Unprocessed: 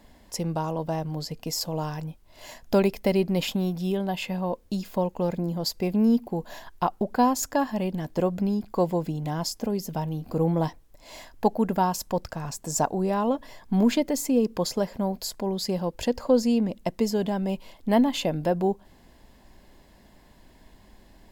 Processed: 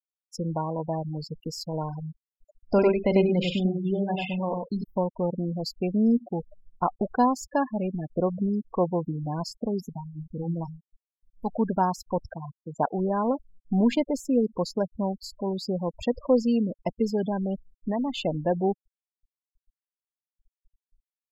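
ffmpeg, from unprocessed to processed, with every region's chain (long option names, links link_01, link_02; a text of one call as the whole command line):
ffmpeg -i in.wav -filter_complex "[0:a]asettb=1/sr,asplit=3[link_01][link_02][link_03];[link_01]atrim=end=2.624[link_04];[link_02]atrim=start=2.62:end=4.84,asetpts=PTS-STARTPTS,afade=type=in:duration=0.004:curve=qsin,afade=type=out:start_time=2.216:duration=0.004:curve=qsin,lowpass=8000,asplit=2[link_05][link_06];[link_06]adelay=44,volume=-10dB[link_07];[link_05][link_07]amix=inputs=2:normalize=0,atrim=end_sample=97902,aecho=1:1:96:0.668,atrim=end_sample=97902[link_08];[link_03]atrim=start=4.836[link_09];[link_04][link_08]acrossfade=duration=0.004:curve1=hsin:curve2=qsin[link_10];[link_10][link_09]acrossfade=duration=0.004:curve1=qsin:curve2=hsin,asettb=1/sr,asplit=3[link_11][link_12][link_13];[link_11]atrim=end=9.894[link_14];[link_12]atrim=start=9.89:end=11.51,asetpts=PTS-STARTPTS,afade=type=in:duration=0.004:curve=qsin,afade=type=out:start_time=1.616:duration=0.004:curve=qsin,equalizer=frequency=520:width=0.63:gain=-11,bandreject=frequency=79.6:width_type=h:width=4,bandreject=frequency=159.2:width_type=h:width=4,bandreject=frequency=238.8:width_type=h:width=4,bandreject=frequency=318.4:width_type=h:width=4,bandreject=frequency=398:width_type=h:width=4[link_15];[link_13]atrim=start=11.506[link_16];[link_14][link_15]acrossfade=duration=0.004:curve1=hsin:curve2=qsin[link_17];[link_17][link_16]acrossfade=duration=0.004:curve1=qsin:curve2=hsin,asettb=1/sr,asplit=3[link_18][link_19][link_20];[link_18]atrim=end=12.354[link_21];[link_19]atrim=start=12.35:end=12.95,asetpts=PTS-STARTPTS,afade=type=in:duration=0.004:curve=qsin,afade=type=out:start_time=0.596:duration=0.004:curve=qsin,lowpass=2600,lowshelf=frequency=88:gain=-11.5[link_22];[link_20]atrim=start=12.946[link_23];[link_21][link_22]acrossfade=duration=0.004:curve1=hsin:curve2=qsin[link_24];[link_24][link_23]acrossfade=duration=0.004:curve1=qsin:curve2=hsin,asettb=1/sr,asplit=3[link_25][link_26][link_27];[link_25]atrim=end=17.344[link_28];[link_26]atrim=start=17.34:end=18.26,asetpts=PTS-STARTPTS,afade=type=in:duration=0.004:curve=qsin,afade=type=out:start_time=0.916:duration=0.004:curve=qsin,acrusher=bits=8:mix=0:aa=0.5,acompressor=threshold=-22dB:ratio=16:attack=3.2:release=140:knee=1:detection=peak[link_29];[link_27]atrim=start=18.256[link_30];[link_28][link_29]acrossfade=duration=0.004:curve1=hsin:curve2=qsin[link_31];[link_31][link_30]acrossfade=duration=0.004:curve1=qsin:curve2=hsin,aemphasis=mode=production:type=75fm,afftfilt=real='re*gte(hypot(re,im),0.0562)':imag='im*gte(hypot(re,im),0.0562)':win_size=1024:overlap=0.75,lowpass=2400" out.wav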